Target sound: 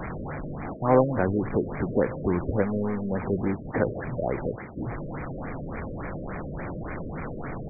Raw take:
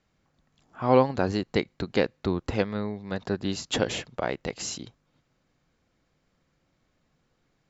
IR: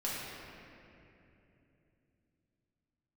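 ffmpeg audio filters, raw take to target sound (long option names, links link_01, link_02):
-filter_complex "[0:a]aeval=exprs='val(0)+0.5*0.0562*sgn(val(0))':channel_layout=same,asplit=2[link_01][link_02];[link_02]adelay=157.4,volume=-21dB,highshelf=frequency=4000:gain=-3.54[link_03];[link_01][link_03]amix=inputs=2:normalize=0,asplit=2[link_04][link_05];[link_05]asetrate=52444,aresample=44100,atempo=0.840896,volume=-12dB[link_06];[link_04][link_06]amix=inputs=2:normalize=0,acrossover=split=320[link_07][link_08];[link_07]acrusher=bits=2:mode=log:mix=0:aa=0.000001[link_09];[link_09][link_08]amix=inputs=2:normalize=0,afftfilt=real='re*lt(b*sr/1024,620*pow(2500/620,0.5+0.5*sin(2*PI*3.5*pts/sr)))':imag='im*lt(b*sr/1024,620*pow(2500/620,0.5+0.5*sin(2*PI*3.5*pts/sr)))':win_size=1024:overlap=0.75,volume=-1.5dB"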